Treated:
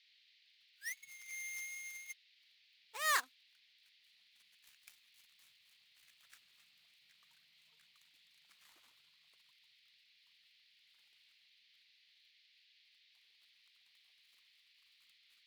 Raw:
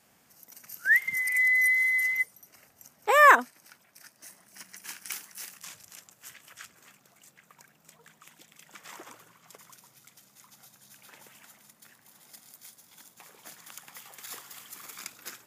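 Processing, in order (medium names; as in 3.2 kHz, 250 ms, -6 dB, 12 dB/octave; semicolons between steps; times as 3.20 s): dead-time distortion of 0.1 ms; Doppler pass-by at 6.87 s, 16 m/s, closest 20 m; band noise 1.9–4.5 kHz -57 dBFS; amplifier tone stack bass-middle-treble 5-5-5; upward expansion 1.5:1, over -58 dBFS; trim +6 dB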